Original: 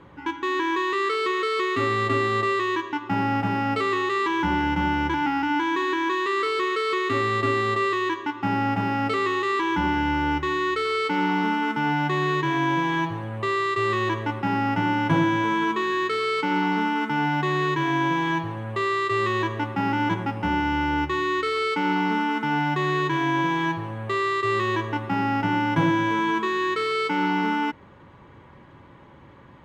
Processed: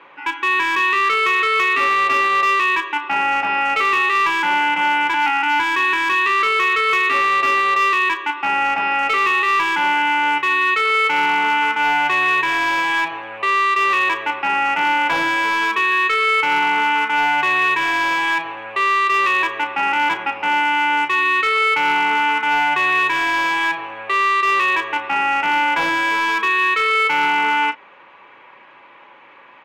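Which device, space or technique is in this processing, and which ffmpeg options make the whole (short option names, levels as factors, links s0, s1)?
megaphone: -filter_complex "[0:a]highpass=700,lowpass=3700,equalizer=f=2500:t=o:w=0.32:g=11.5,asoftclip=type=hard:threshold=0.1,asplit=2[s0][s1];[s1]adelay=34,volume=0.251[s2];[s0][s2]amix=inputs=2:normalize=0,volume=2.51"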